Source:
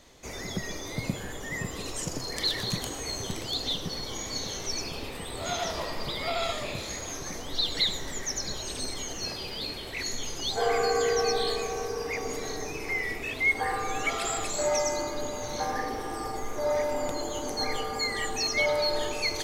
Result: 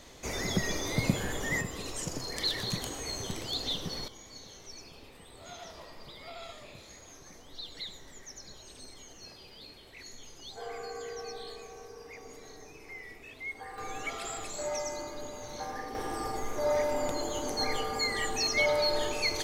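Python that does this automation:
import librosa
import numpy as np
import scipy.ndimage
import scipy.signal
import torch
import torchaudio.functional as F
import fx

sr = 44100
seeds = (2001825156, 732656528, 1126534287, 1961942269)

y = fx.gain(x, sr, db=fx.steps((0.0, 3.5), (1.61, -3.0), (4.08, -15.0), (13.78, -8.0), (15.95, -1.0)))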